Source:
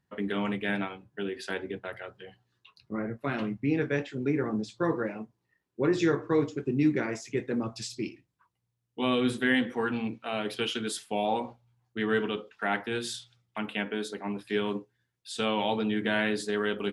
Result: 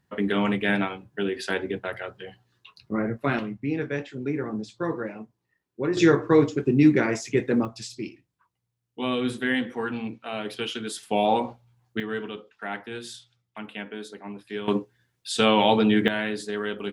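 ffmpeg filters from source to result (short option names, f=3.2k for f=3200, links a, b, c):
-af "asetnsamples=n=441:p=0,asendcmd='3.39 volume volume -0.5dB;5.97 volume volume 7.5dB;7.65 volume volume 0dB;11.03 volume volume 6.5dB;12 volume volume -4dB;14.68 volume volume 9dB;16.08 volume volume -0.5dB',volume=6.5dB"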